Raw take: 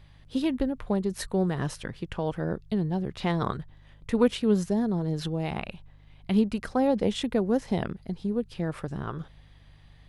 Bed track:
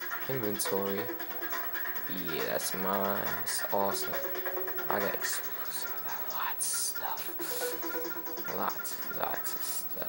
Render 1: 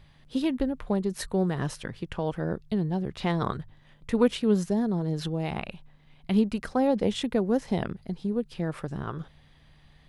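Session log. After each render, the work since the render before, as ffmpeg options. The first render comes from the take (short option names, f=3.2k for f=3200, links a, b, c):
-af "bandreject=f=50:t=h:w=4,bandreject=f=100:t=h:w=4"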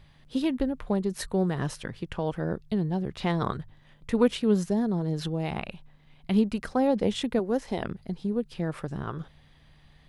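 -filter_complex "[0:a]asettb=1/sr,asplit=3[a][b][c];[a]atrim=end=7.394[d];[b]atrim=start=7.39:end=7.84,asetpts=PTS-STARTPTS,afade=t=in:d=0.004:c=qsin,afade=t=out:st=0.446:d=0.004:c=qsin,equalizer=f=150:w=1.5:g=-10.5[e];[c]atrim=start=7.836[f];[d][e]acrossfade=d=0.004:c1=hsin:c2=qsin[g];[g][f]acrossfade=d=0.004:c1=qsin:c2=hsin"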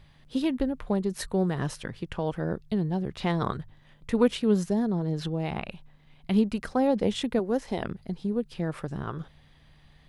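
-filter_complex "[0:a]asettb=1/sr,asplit=3[a][b][c];[a]atrim=end=4.874[d];[b]atrim=start=4.87:end=5.68,asetpts=PTS-STARTPTS,afade=t=in:d=0.004:c=qsin,afade=t=out:st=0.806:d=0.004:c=qsin,highshelf=f=6.9k:g=-6.5[e];[c]atrim=start=5.676[f];[d][e]acrossfade=d=0.004:c1=hsin:c2=qsin[g];[g][f]acrossfade=d=0.004:c1=qsin:c2=hsin"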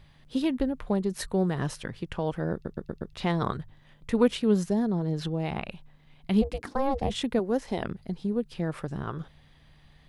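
-filter_complex "[0:a]asplit=3[a][b][c];[a]afade=t=out:st=6.41:d=0.02[d];[b]aeval=exprs='val(0)*sin(2*PI*270*n/s)':c=same,afade=t=in:st=6.41:d=0.02,afade=t=out:st=7.09:d=0.02[e];[c]afade=t=in:st=7.09:d=0.02[f];[d][e][f]amix=inputs=3:normalize=0,asplit=6[g][h][i][j][k][l];[g]atrim=end=2.652[m];[h]atrim=start=2.528:end=2.652[n];[i]atrim=start=2.528:end=2.652[o];[j]atrim=start=2.528:end=2.652[p];[k]atrim=start=2.528:end=2.652[q];[l]atrim=start=3.128[r];[m][n]acrossfade=d=0.004:c1=hsin:c2=hsin[s];[s][o]acrossfade=d=0.004:c1=hsin:c2=hsin[t];[t][p]acrossfade=d=0.004:c1=hsin:c2=hsin[u];[u][q]acrossfade=d=0.004:c1=hsin:c2=hsin[v];[v][r]acrossfade=d=0.004:c1=hsin:c2=hsin"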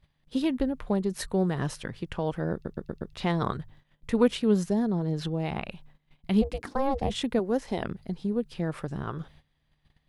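-af "agate=range=-16dB:threshold=-52dB:ratio=16:detection=peak"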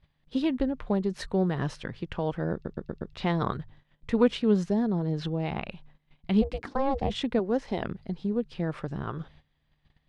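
-af "lowpass=5k"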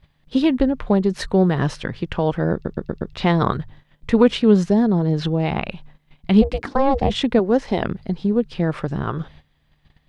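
-af "volume=9.5dB,alimiter=limit=-3dB:level=0:latency=1"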